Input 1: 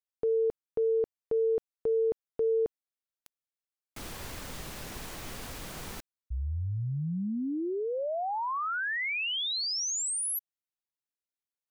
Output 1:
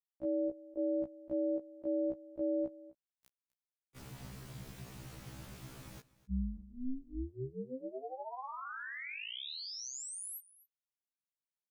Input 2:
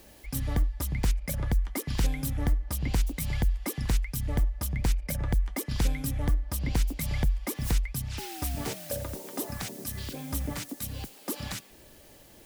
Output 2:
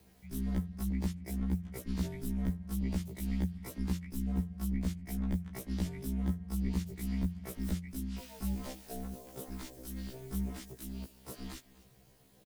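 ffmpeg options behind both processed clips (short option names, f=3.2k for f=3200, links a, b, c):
-af "lowshelf=f=170:g=7,aeval=exprs='val(0)*sin(2*PI*130*n/s)':c=same,aecho=1:1:254:0.1,afftfilt=real='re*1.73*eq(mod(b,3),0)':imag='im*1.73*eq(mod(b,3),0)':win_size=2048:overlap=0.75,volume=-7dB"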